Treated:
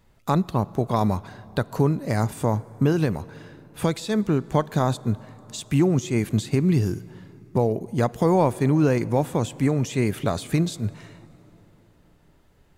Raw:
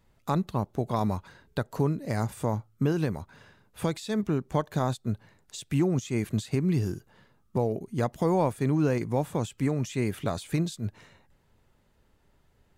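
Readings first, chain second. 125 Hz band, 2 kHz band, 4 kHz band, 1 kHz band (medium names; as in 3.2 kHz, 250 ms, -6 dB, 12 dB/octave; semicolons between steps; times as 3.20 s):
+5.5 dB, +5.5 dB, +5.5 dB, +5.5 dB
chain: plate-style reverb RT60 4.2 s, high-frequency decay 0.6×, DRR 19.5 dB; trim +5.5 dB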